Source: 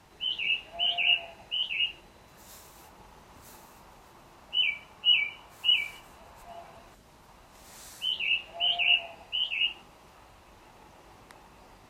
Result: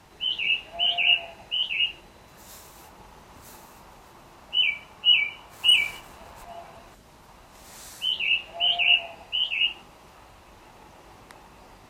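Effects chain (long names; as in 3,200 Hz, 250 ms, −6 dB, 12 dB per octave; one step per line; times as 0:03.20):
0:05.53–0:06.45: leveller curve on the samples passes 1
level +4 dB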